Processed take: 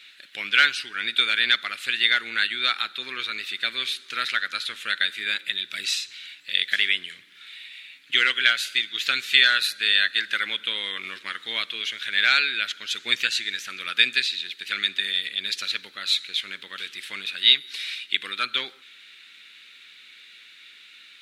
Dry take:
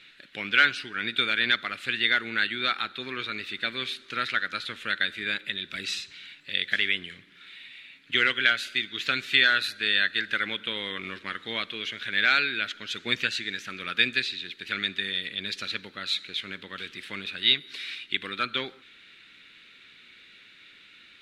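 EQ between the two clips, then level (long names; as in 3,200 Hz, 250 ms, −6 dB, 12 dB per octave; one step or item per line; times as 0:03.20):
spectral tilt +3.5 dB per octave
−1.0 dB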